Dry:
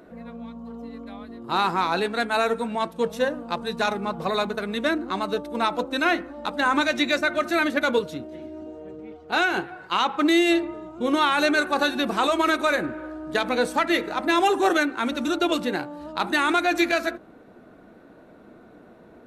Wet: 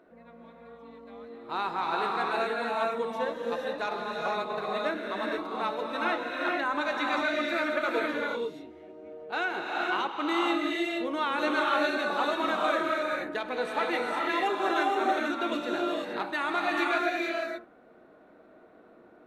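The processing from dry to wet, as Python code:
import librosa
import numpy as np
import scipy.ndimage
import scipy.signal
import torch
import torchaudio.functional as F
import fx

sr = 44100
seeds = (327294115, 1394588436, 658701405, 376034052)

y = fx.bass_treble(x, sr, bass_db=-10, treble_db=-9)
y = fx.rev_gated(y, sr, seeds[0], gate_ms=500, shape='rising', drr_db=-2.0)
y = y * 10.0 ** (-8.5 / 20.0)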